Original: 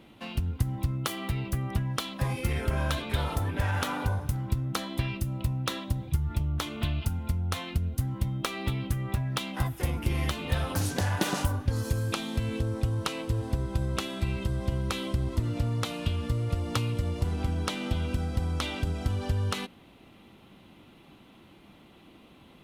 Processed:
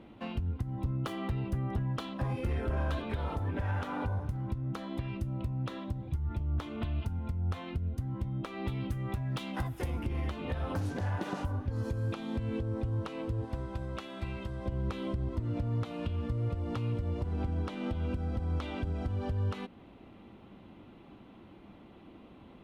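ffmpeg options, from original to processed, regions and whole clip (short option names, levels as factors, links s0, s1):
-filter_complex "[0:a]asettb=1/sr,asplit=3[s0][s1][s2];[s0]atrim=end=0.714[s3];[s1]atrim=start=0.71:end=3.07,asetpts=PTS-STARTPTS,afade=t=in:d=0.004:c=qsin,afade=t=out:st=2.356:d=0.004:c=qsin,bandreject=f=2200:w=11,asoftclip=type=hard:threshold=0.0708[s4];[s2]atrim=start=3.066[s5];[s3][s4]acrossfade=d=0.004:c1=hsin:c2=qsin[s6];[s6][s5]acrossfade=d=0.004:c1=qsin:c2=hsin,asettb=1/sr,asplit=3[s7][s8][s9];[s7]atrim=end=8.674[s10];[s8]atrim=start=8.67:end=10.03,asetpts=PTS-STARTPTS,afade=t=in:d=0.004:c=qsin,afade=t=out:st=1.356:d=0.004:c=qsin,highshelf=f=3400:g=10.5,asoftclip=type=hard:threshold=0.133[s11];[s9]atrim=start=10.026[s12];[s10][s11]acrossfade=d=0.004:c1=hsin:c2=qsin[s13];[s13][s12]acrossfade=d=0.004:c1=qsin:c2=hsin,asettb=1/sr,asplit=3[s14][s15][s16];[s14]atrim=end=13.454[s17];[s15]atrim=start=13.45:end=14.66,asetpts=PTS-STARTPTS,afade=t=in:d=0.004:c=qsin,afade=t=out:st=1.206:d=0.004:c=qsin,lowshelf=f=470:g=-10,bandreject=f=420:w=9.3[s18];[s16]atrim=start=14.656[s19];[s17][s18]acrossfade=d=0.004:c1=hsin:c2=qsin[s20];[s20][s19]acrossfade=d=0.004:c1=qsin:c2=hsin,lowpass=f=1100:p=1,equalizer=f=150:w=6.9:g=-6.5,alimiter=level_in=1.41:limit=0.0631:level=0:latency=1:release=273,volume=0.708,volume=1.33"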